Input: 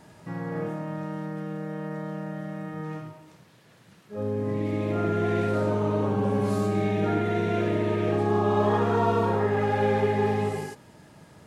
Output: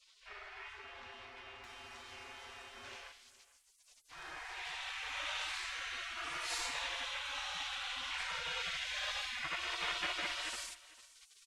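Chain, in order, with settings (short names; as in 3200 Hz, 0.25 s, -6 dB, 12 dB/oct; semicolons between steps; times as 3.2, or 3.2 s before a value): LPF 3300 Hz 12 dB/oct, from 1.64 s 7100 Hz; spectral gate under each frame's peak -30 dB weak; echo 0.447 s -19.5 dB; gain +8.5 dB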